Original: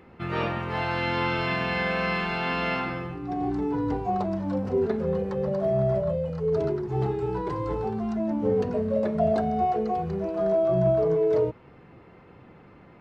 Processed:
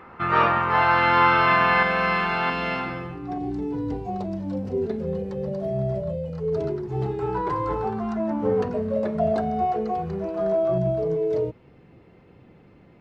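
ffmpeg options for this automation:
ffmpeg -i in.wav -af "asetnsamples=nb_out_samples=441:pad=0,asendcmd='1.83 equalizer g 8;2.5 equalizer g 1;3.38 equalizer g -9.5;6.33 equalizer g -3;7.19 equalizer g 8.5;8.68 equalizer g 1.5;10.78 equalizer g -8',equalizer=frequency=1200:width_type=o:width=1.5:gain=15" out.wav

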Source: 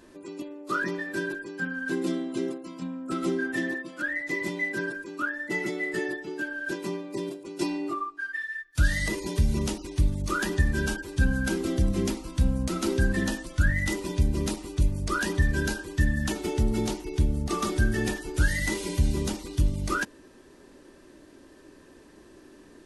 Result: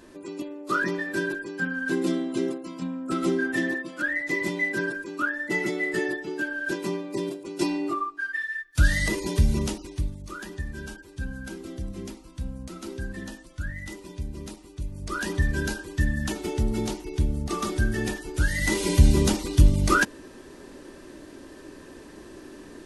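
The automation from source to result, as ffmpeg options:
ffmpeg -i in.wav -af "volume=20.5dB,afade=type=out:start_time=9.43:duration=0.76:silence=0.223872,afade=type=in:start_time=14.87:duration=0.46:silence=0.334965,afade=type=in:start_time=18.52:duration=0.4:silence=0.398107" out.wav

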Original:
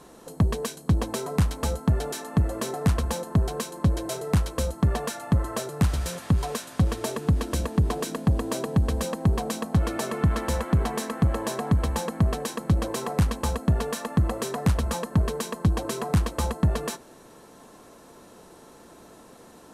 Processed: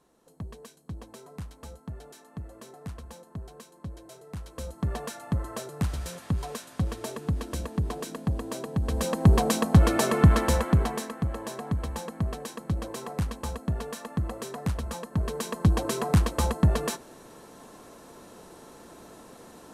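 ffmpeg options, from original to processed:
ffmpeg -i in.wav -af "volume=13dB,afade=type=in:start_time=4.35:duration=0.61:silence=0.281838,afade=type=in:start_time=8.8:duration=0.56:silence=0.281838,afade=type=out:start_time=10.25:duration=0.91:silence=0.251189,afade=type=in:start_time=15.12:duration=0.57:silence=0.398107" out.wav

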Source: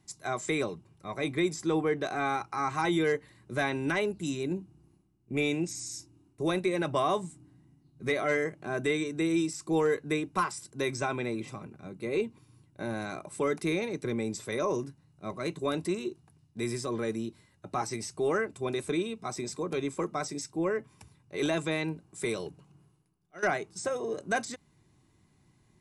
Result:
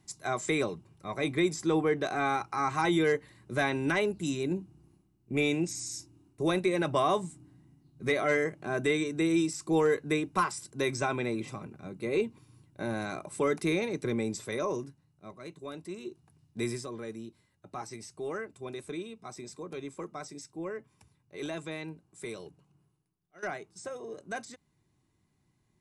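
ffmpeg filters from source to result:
ffmpeg -i in.wav -af "volume=13dB,afade=type=out:start_time=14.18:duration=1.19:silence=0.251189,afade=type=in:start_time=15.87:duration=0.74:silence=0.251189,afade=type=out:start_time=16.61:duration=0.3:silence=0.354813" out.wav

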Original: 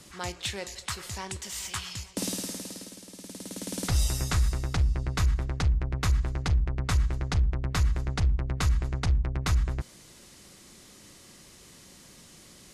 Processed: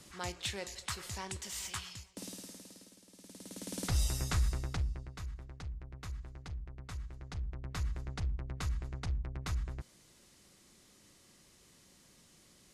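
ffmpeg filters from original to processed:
ffmpeg -i in.wav -af "volume=10dB,afade=type=out:start_time=1.66:duration=0.43:silence=0.354813,afade=type=in:start_time=3.05:duration=0.78:silence=0.398107,afade=type=out:start_time=4.55:duration=0.57:silence=0.251189,afade=type=in:start_time=7.14:duration=0.74:silence=0.446684" out.wav

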